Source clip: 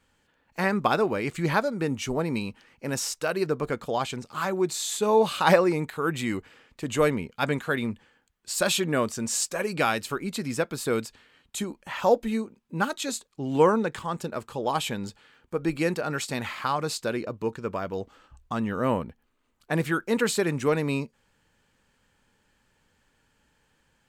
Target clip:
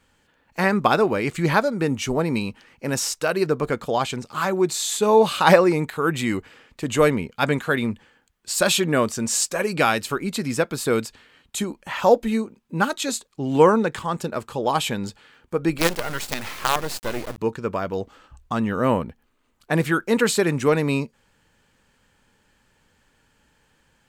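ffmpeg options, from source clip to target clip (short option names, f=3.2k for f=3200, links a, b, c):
-filter_complex "[0:a]asettb=1/sr,asplit=3[a][b][c];[a]atrim=end=15.784[d];[b]atrim=start=15.78:end=17.38,asetpts=PTS-STARTPTS,afade=t=in:d=0.004:c=qsin,afade=t=out:st=1.596:d=0.004:c=qsin,acrusher=bits=4:dc=4:mix=0:aa=0.000001[e];[c]atrim=start=17.376[f];[d][e]acrossfade=d=0.004:c1=hsin:c2=qsin[g];[g][f]acrossfade=d=0.004:c1=qsin:c2=hsin,volume=5dB"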